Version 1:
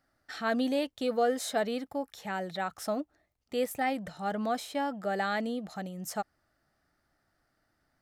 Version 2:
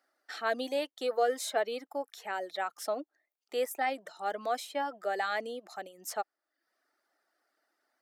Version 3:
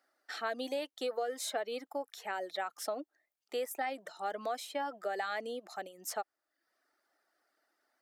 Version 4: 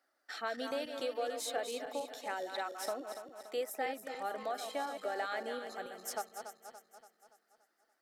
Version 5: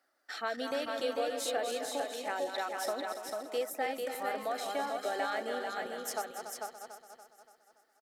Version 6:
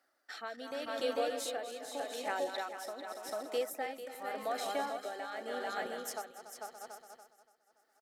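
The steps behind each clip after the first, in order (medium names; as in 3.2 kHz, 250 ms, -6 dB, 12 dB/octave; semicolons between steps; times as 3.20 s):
high-pass 340 Hz 24 dB/octave; reverb removal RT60 0.63 s
compression 6:1, threshold -32 dBFS, peak gain reduction 9.5 dB
backward echo that repeats 143 ms, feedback 70%, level -7.5 dB; trim -2 dB
delay 445 ms -4.5 dB; trim +2.5 dB
tremolo 0.86 Hz, depth 63%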